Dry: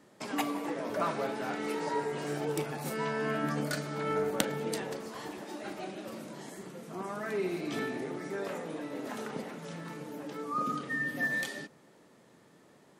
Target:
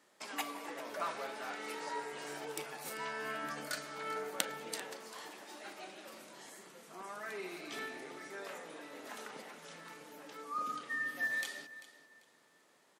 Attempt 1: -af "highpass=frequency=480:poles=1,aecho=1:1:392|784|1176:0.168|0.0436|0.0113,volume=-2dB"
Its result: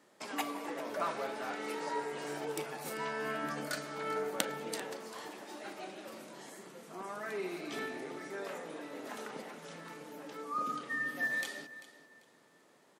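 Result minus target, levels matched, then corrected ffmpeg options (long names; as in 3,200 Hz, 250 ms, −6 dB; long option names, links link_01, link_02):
500 Hz band +3.0 dB
-af "highpass=frequency=1200:poles=1,aecho=1:1:392|784|1176:0.168|0.0436|0.0113,volume=-2dB"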